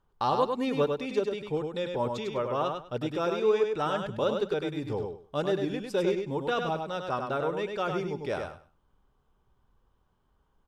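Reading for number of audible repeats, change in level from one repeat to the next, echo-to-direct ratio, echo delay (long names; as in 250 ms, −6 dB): 3, −14.0 dB, −5.0 dB, 100 ms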